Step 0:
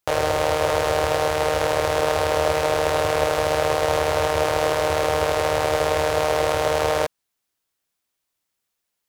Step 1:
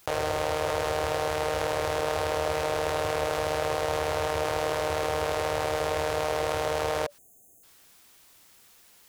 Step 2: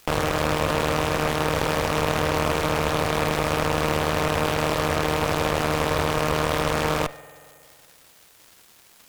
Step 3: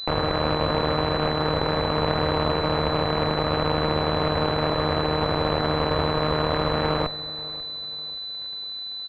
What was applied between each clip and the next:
notch 580 Hz, Q 19; spectral delete 7.18–7.63, 790–6200 Hz; fast leveller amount 50%; gain -8 dB
spring tank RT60 2.3 s, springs 46 ms, chirp 45 ms, DRR 12 dB; added harmonics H 8 -9 dB, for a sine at -11.5 dBFS; crackle 300/s -40 dBFS; gain +1.5 dB
feedback echo 0.541 s, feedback 38%, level -19 dB; pulse-width modulation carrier 4000 Hz

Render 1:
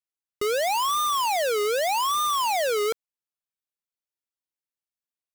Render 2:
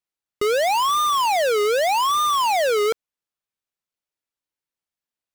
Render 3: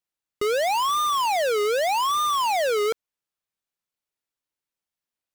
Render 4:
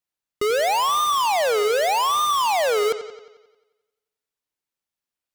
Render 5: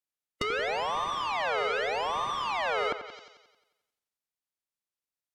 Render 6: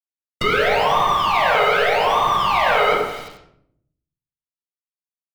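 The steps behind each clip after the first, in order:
high shelf 6100 Hz -6.5 dB; gain +5 dB
limiter -22 dBFS, peak gain reduction 3 dB
sample leveller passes 1; on a send: analogue delay 89 ms, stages 4096, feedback 57%, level -12.5 dB; on the sum: gain +2 dB
spectral limiter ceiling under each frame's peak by 21 dB; treble ducked by the level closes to 1900 Hz, closed at -21.5 dBFS; gain -5.5 dB
requantised 8-bit, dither none; reverb RT60 0.65 s, pre-delay 10 ms, DRR -5 dB; gain +4.5 dB

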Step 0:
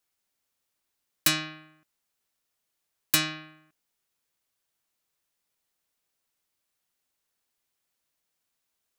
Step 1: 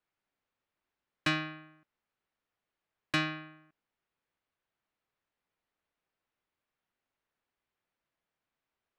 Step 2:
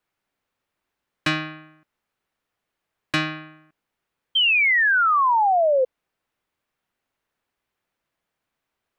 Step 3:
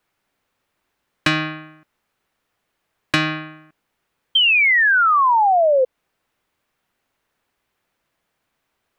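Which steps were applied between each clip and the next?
LPF 2300 Hz 12 dB/oct
painted sound fall, 4.35–5.85, 500–3200 Hz -25 dBFS; gain +7 dB
compressor 3:1, threshold -22 dBFS, peak gain reduction 4 dB; gain +7.5 dB

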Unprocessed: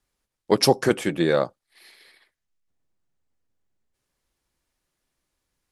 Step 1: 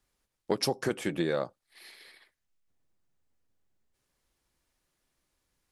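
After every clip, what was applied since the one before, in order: compressor 4:1, threshold -27 dBFS, peak gain reduction 13.5 dB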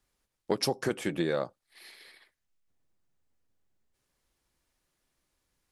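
nothing audible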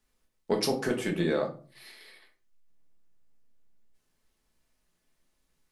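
reverb RT60 0.40 s, pre-delay 5 ms, DRR 1.5 dB; gain -1 dB

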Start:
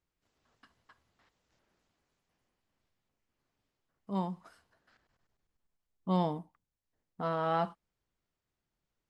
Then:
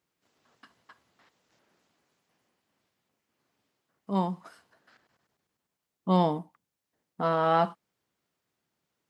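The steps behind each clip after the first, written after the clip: HPF 150 Hz 12 dB/oct; gain +7 dB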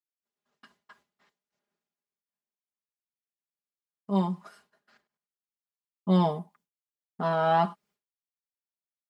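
expander -58 dBFS; comb 4.9 ms, depth 80%; gain -2 dB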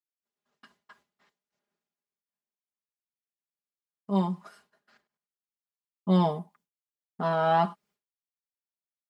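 nothing audible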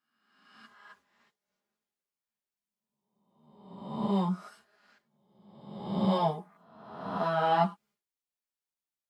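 spectral swells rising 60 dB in 1.13 s; ensemble effect

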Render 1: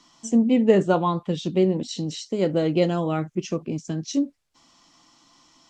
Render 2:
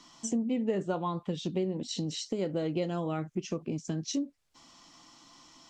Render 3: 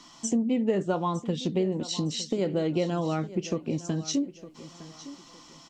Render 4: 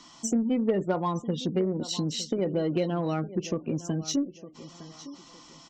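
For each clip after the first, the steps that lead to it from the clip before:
compressor 3:1, threshold -33 dBFS, peak gain reduction 16 dB; gain +1 dB
feedback echo 0.909 s, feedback 31%, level -16 dB; gain +4.5 dB
spectral gate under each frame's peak -30 dB strong; added harmonics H 4 -29 dB, 6 -21 dB, 8 -25 dB, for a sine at -14 dBFS

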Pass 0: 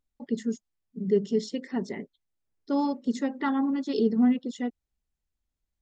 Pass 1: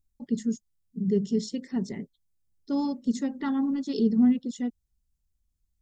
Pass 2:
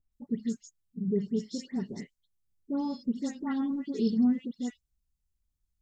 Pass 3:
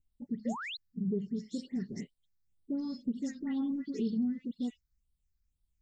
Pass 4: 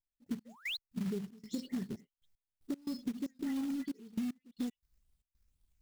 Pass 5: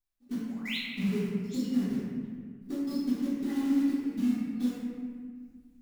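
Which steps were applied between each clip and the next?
tone controls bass +15 dB, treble +11 dB; gain -6.5 dB
dispersion highs, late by 0.128 s, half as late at 2100 Hz; gain -4 dB
compressor 3:1, threshold -31 dBFS, peak gain reduction 8 dB; phaser stages 6, 2 Hz, lowest notch 740–1900 Hz; painted sound rise, 0.45–0.77, 450–4400 Hz -40 dBFS
step gate "..x..x.xxx.xxxx" 115 bpm -24 dB; short-mantissa float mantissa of 2-bit; compressor, threshold -37 dBFS, peak gain reduction 9.5 dB; gain +3.5 dB
reverb RT60 1.7 s, pre-delay 3 ms, DRR -11.5 dB; gain -5 dB

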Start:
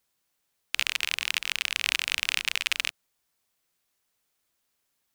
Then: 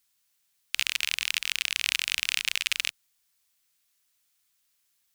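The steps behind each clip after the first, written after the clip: passive tone stack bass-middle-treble 5-5-5; in parallel at -2 dB: limiter -21.5 dBFS, peak gain reduction 10.5 dB; on the sum: gain +5.5 dB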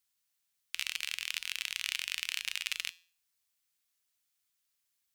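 resonator 86 Hz, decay 0.45 s, harmonics odd, mix 50%; gain -3 dB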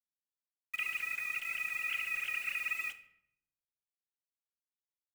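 sine-wave speech; bit-crush 8-bit; shoebox room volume 170 m³, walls mixed, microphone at 0.33 m

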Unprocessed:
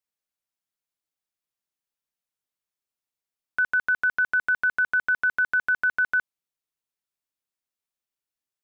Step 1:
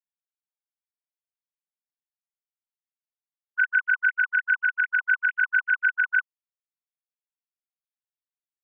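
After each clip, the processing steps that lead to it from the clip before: sine-wave speech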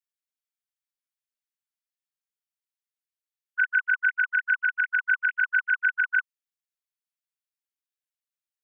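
HPF 1300 Hz 24 dB/oct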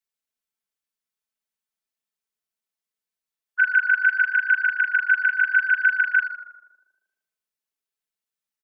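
comb 4.6 ms, depth 71%; on a send: tape echo 78 ms, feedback 81%, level -6 dB, low-pass 1400 Hz; on the sum: gain +1 dB

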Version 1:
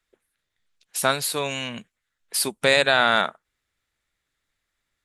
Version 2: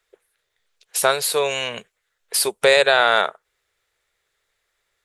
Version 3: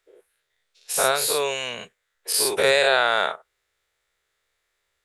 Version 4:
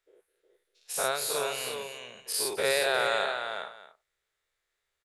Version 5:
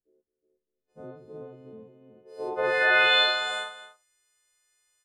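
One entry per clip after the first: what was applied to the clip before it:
resonant low shelf 340 Hz -7 dB, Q 3; in parallel at +0.5 dB: compressor, threshold -27 dBFS, peak gain reduction 14.5 dB
spectral dilation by 0.12 s; gain -7 dB
tapped delay 0.21/0.362/0.434/0.6 s -18.5/-6/-19.5/-20 dB; gain -8.5 dB
frequency quantiser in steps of 3 st; low-pass sweep 240 Hz -> 8500 Hz, 2.01–3.55

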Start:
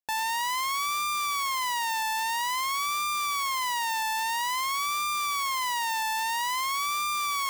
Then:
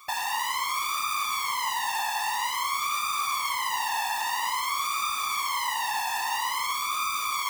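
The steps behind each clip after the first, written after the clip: reverse echo 0.811 s -21.5 dB; whisperiser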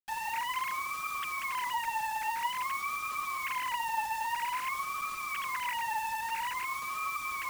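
sine-wave speech; bit-crush 6-bit; gain -6 dB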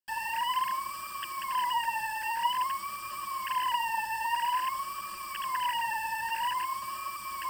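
ripple EQ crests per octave 1.3, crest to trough 16 dB; gain -2 dB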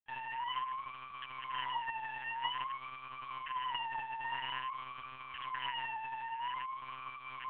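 monotone LPC vocoder at 8 kHz 130 Hz; gain -8 dB

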